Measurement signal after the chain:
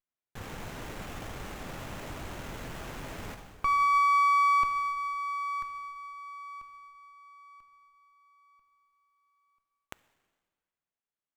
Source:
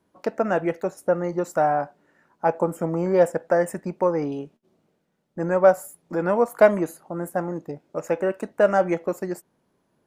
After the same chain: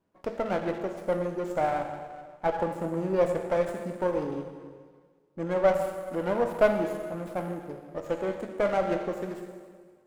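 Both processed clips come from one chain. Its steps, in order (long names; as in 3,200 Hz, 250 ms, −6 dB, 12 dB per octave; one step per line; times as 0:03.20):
dense smooth reverb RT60 1.7 s, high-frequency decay 0.9×, DRR 4 dB
windowed peak hold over 9 samples
level −7 dB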